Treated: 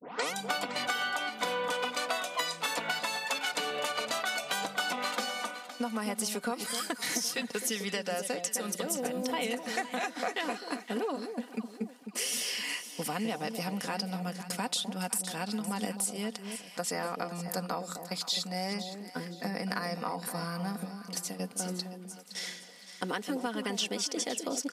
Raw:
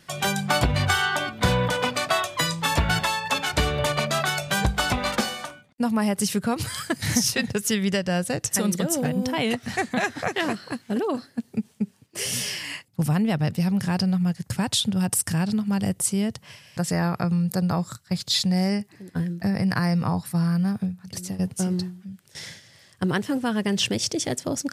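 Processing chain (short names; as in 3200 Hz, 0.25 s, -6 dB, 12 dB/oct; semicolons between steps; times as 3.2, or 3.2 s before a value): tape start at the beginning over 0.34 s; Bessel high-pass 370 Hz, order 4; notch 1700 Hz, Q 18; comb 4.1 ms, depth 48%; compressor 5:1, threshold -29 dBFS, peak gain reduction 11.5 dB; on a send: echo with dull and thin repeats by turns 0.257 s, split 800 Hz, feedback 56%, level -7 dB; on the sum: gain -1 dB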